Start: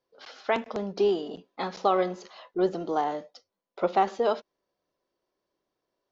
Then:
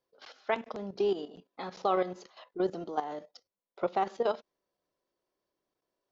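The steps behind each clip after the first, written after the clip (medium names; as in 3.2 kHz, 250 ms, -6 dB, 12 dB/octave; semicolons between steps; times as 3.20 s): level held to a coarse grid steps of 12 dB; trim -2 dB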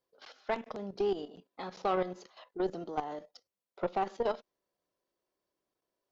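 valve stage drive 21 dB, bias 0.45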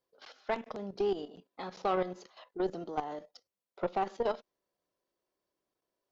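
no audible change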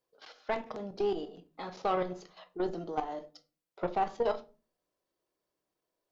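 simulated room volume 180 m³, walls furnished, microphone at 0.56 m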